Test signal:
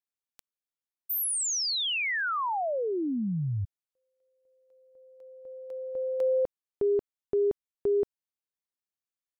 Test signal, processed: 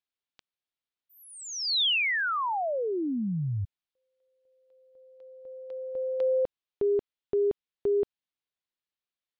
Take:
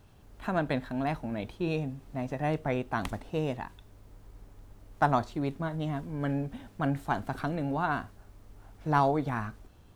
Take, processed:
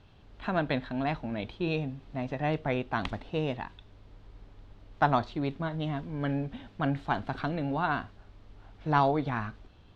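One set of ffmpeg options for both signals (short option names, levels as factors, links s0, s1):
-af "lowpass=f=3700:t=q:w=1.7"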